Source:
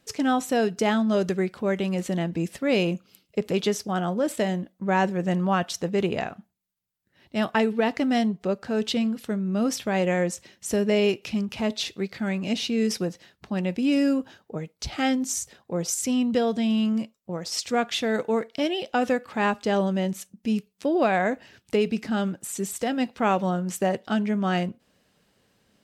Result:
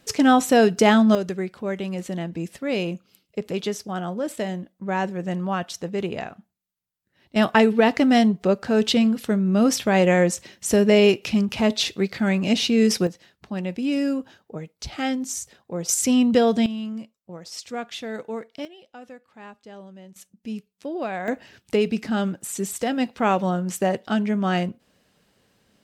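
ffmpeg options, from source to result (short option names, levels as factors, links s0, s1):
-af "asetnsamples=n=441:p=0,asendcmd='1.15 volume volume -2.5dB;7.36 volume volume 6dB;13.07 volume volume -1.5dB;15.89 volume volume 5.5dB;16.66 volume volume -7dB;18.65 volume volume -19dB;20.16 volume volume -7dB;21.28 volume volume 2dB',volume=2.24"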